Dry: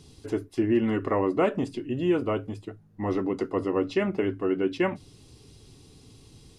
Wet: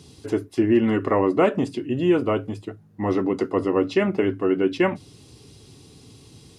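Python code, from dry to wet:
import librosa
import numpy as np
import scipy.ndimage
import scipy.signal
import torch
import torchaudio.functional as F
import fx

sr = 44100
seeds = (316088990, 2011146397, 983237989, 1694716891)

y = scipy.signal.sosfilt(scipy.signal.butter(2, 80.0, 'highpass', fs=sr, output='sos'), x)
y = y * 10.0 ** (5.0 / 20.0)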